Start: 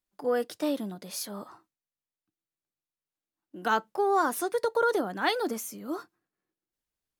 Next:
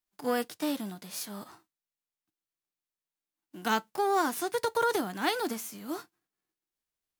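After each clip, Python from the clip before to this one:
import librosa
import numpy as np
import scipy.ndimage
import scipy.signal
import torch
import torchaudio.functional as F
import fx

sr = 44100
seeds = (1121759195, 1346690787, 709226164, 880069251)

y = fx.envelope_flatten(x, sr, power=0.6)
y = fx.notch(y, sr, hz=550.0, q=12.0)
y = F.gain(torch.from_numpy(y), -2.0).numpy()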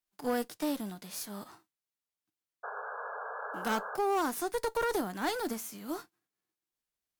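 y = fx.cheby_harmonics(x, sr, harmonics=(5, 6, 8), levels_db=(-17, -14, -25), full_scale_db=-14.0)
y = fx.dynamic_eq(y, sr, hz=3000.0, q=0.97, threshold_db=-42.0, ratio=4.0, max_db=-4)
y = fx.spec_paint(y, sr, seeds[0], shape='noise', start_s=2.63, length_s=1.34, low_hz=410.0, high_hz=1700.0, level_db=-34.0)
y = F.gain(torch.from_numpy(y), -6.0).numpy()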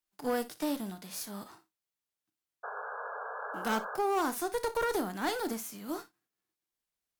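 y = fx.room_early_taps(x, sr, ms=(31, 59), db=(-16.0, -16.0))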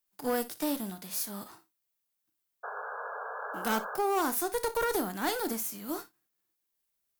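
y = fx.high_shelf(x, sr, hz=11000.0, db=12.0)
y = F.gain(torch.from_numpy(y), 1.0).numpy()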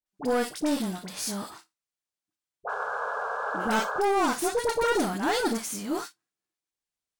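y = fx.leveller(x, sr, passes=2)
y = scipy.signal.savgol_filter(y, 9, 4, mode='constant')
y = fx.dispersion(y, sr, late='highs', ms=62.0, hz=1100.0)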